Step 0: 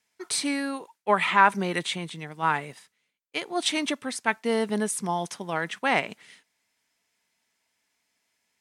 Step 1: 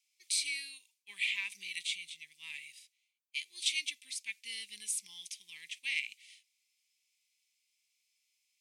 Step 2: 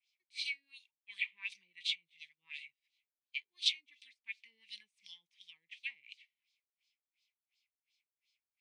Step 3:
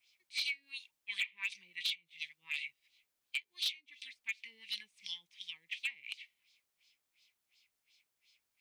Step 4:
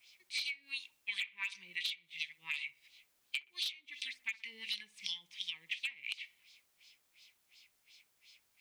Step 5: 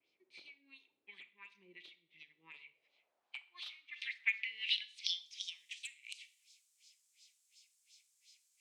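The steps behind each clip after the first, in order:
harmonic and percussive parts rebalanced percussive −5 dB; elliptic high-pass filter 2,300 Hz, stop band 40 dB
auto-filter low-pass sine 2.8 Hz 480–4,400 Hz; guitar amp tone stack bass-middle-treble 5-5-5; level +3 dB
downward compressor 6 to 1, threshold −44 dBFS, peak gain reduction 18 dB; hard clipping −38.5 dBFS, distortion −17 dB; level +11 dB
downward compressor 6 to 1, threshold −45 dBFS, peak gain reduction 13.5 dB; delay with a low-pass on its return 62 ms, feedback 42%, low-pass 1,300 Hz, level −13 dB; level +9 dB
band-pass filter sweep 360 Hz → 7,500 Hz, 0:02.46–0:05.66; four-comb reverb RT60 0.47 s, combs from 27 ms, DRR 14.5 dB; pitch vibrato 0.81 Hz 27 cents; level +7 dB

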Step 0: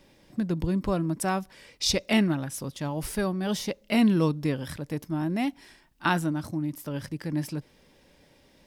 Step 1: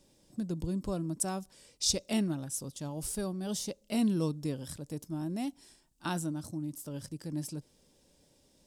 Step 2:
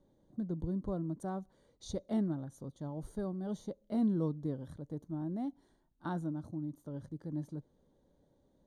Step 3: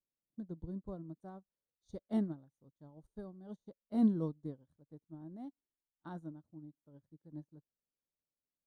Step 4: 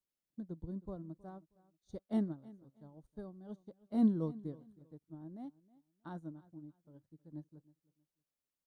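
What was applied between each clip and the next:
graphic EQ with 10 bands 1,000 Hz −3 dB, 2,000 Hz −10 dB, 8,000 Hz +11 dB; level −7 dB
moving average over 17 samples; level −2 dB
expander for the loud parts 2.5 to 1, over −52 dBFS; level +4 dB
repeating echo 317 ms, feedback 25%, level −21 dB

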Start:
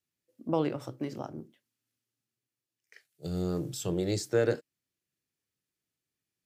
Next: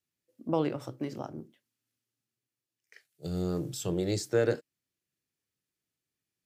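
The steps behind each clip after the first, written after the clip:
no processing that can be heard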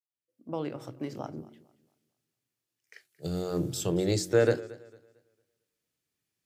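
fade in at the beginning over 1.63 s
hum removal 45.23 Hz, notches 8
feedback echo with a swinging delay time 226 ms, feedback 31%, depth 71 cents, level −20 dB
level +3.5 dB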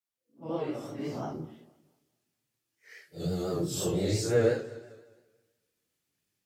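random phases in long frames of 200 ms
in parallel at +3 dB: downward compressor, threshold −34 dBFS, peak gain reduction 16.5 dB
on the sum: pitch vibrato 5.8 Hz 59 cents
level −4.5 dB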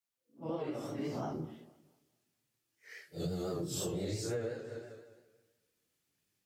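downward compressor 16 to 1, threshold −33 dBFS, peak gain reduction 15 dB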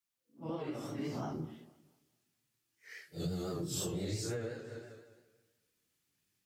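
parametric band 550 Hz −5 dB 1.2 octaves
level +1 dB

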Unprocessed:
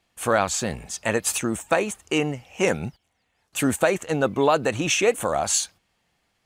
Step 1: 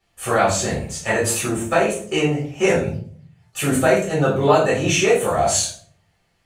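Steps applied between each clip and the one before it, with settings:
convolution reverb RT60 0.50 s, pre-delay 5 ms, DRR −7.5 dB
level −7 dB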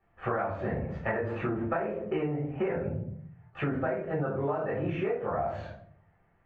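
low-pass filter 1,800 Hz 24 dB per octave
hum removal 64.49 Hz, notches 10
downward compressor 12 to 1, threshold −27 dBFS, peak gain reduction 18 dB

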